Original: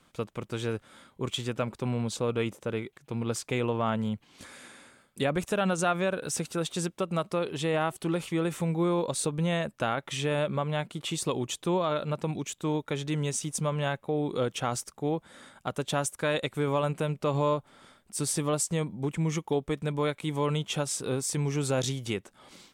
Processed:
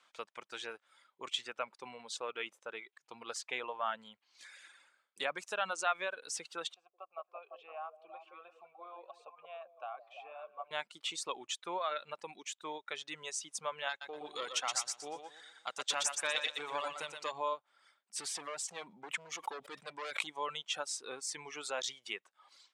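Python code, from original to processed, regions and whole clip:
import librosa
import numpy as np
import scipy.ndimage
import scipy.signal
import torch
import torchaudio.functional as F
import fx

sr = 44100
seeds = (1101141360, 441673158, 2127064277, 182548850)

y = fx.chain(x, sr, fx.vowel_filter(vowel='a'),
    fx.high_shelf(hz=3400.0, db=-6.5),
    fx.echo_stepped(ms=170, hz=450.0, octaves=0.7, feedback_pct=70, wet_db=-2), at=(6.74, 10.71))
y = fx.chain(y, sr, fx.peak_eq(hz=6300.0, db=11.0, octaves=2.1),
    fx.tube_stage(drive_db=15.0, bias=0.55),
    fx.echo_feedback(ms=121, feedback_pct=46, wet_db=-3.0), at=(13.89, 17.32))
y = fx.chain(y, sr, fx.overload_stage(gain_db=30.0),
    fx.env_flatten(amount_pct=100), at=(18.16, 20.27))
y = scipy.signal.sosfilt(scipy.signal.butter(2, 850.0, 'highpass', fs=sr, output='sos'), y)
y = fx.dereverb_blind(y, sr, rt60_s=1.8)
y = scipy.signal.sosfilt(scipy.signal.butter(2, 6400.0, 'lowpass', fs=sr, output='sos'), y)
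y = y * librosa.db_to_amplitude(-2.0)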